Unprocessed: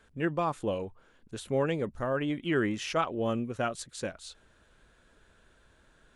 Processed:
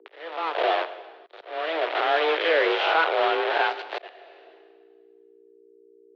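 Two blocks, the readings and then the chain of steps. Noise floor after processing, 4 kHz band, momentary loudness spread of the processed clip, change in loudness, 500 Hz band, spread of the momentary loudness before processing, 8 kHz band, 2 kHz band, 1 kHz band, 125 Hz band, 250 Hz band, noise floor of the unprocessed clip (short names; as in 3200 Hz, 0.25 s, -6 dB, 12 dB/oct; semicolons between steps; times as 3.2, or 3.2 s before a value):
-56 dBFS, +12.5 dB, 15 LU, +7.5 dB, +7.0 dB, 14 LU, under -10 dB, +12.5 dB, +10.5 dB, under -40 dB, -6.5 dB, -64 dBFS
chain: spectral swells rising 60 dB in 0.83 s; in parallel at +2 dB: limiter -21.5 dBFS, peak gain reduction 7.5 dB; on the sum: bit-crush 4-bit; AGC gain up to 7 dB; hum 60 Hz, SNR 19 dB; mistuned SSB +160 Hz 200–3600 Hz; plate-style reverb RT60 1.5 s, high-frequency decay 0.95×, pre-delay 0 ms, DRR 11 dB; auto swell 0.533 s; gain -6.5 dB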